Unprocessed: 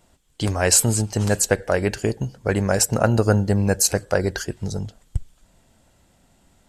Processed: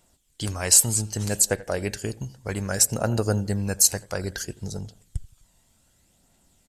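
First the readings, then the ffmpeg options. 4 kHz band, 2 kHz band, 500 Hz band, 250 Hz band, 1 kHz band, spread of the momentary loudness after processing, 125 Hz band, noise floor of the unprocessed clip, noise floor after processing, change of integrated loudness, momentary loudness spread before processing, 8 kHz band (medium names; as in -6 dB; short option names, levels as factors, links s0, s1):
-1.5 dB, -7.0 dB, -8.0 dB, -7.0 dB, -8.0 dB, 19 LU, -6.5 dB, -60 dBFS, -65 dBFS, -2.0 dB, 13 LU, +1.0 dB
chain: -filter_complex "[0:a]highshelf=f=3600:g=11.5,asplit=2[s0][s1];[s1]adelay=84,lowpass=f=2100:p=1,volume=0.1,asplit=2[s2][s3];[s3]adelay=84,lowpass=f=2100:p=1,volume=0.46,asplit=2[s4][s5];[s5]adelay=84,lowpass=f=2100:p=1,volume=0.46[s6];[s2][s4][s6]amix=inputs=3:normalize=0[s7];[s0][s7]amix=inputs=2:normalize=0,aphaser=in_gain=1:out_gain=1:delay=1.1:decay=0.3:speed=0.63:type=triangular,volume=0.355"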